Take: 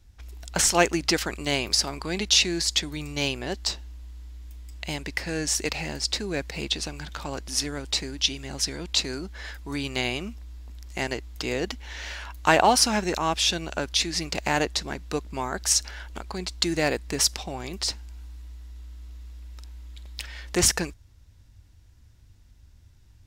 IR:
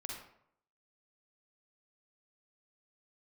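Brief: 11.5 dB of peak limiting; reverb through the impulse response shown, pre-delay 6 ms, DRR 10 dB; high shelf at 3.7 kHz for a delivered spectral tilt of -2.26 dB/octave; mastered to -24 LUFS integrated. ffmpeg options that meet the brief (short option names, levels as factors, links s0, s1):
-filter_complex "[0:a]highshelf=f=3700:g=5,alimiter=limit=0.237:level=0:latency=1,asplit=2[s0][s1];[1:a]atrim=start_sample=2205,adelay=6[s2];[s1][s2]afir=irnorm=-1:irlink=0,volume=0.355[s3];[s0][s3]amix=inputs=2:normalize=0,volume=1.33"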